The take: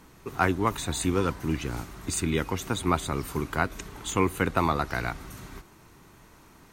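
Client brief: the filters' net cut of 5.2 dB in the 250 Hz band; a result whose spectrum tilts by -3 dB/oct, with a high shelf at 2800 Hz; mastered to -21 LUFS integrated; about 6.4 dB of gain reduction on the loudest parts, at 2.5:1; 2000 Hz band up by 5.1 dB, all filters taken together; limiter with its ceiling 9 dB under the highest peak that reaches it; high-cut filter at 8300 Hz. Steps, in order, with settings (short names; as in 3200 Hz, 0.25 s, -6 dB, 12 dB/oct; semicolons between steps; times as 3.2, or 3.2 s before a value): LPF 8300 Hz; bell 250 Hz -7.5 dB; bell 2000 Hz +4 dB; high shelf 2800 Hz +8 dB; compressor 2.5:1, threshold -26 dBFS; gain +12.5 dB; limiter -8.5 dBFS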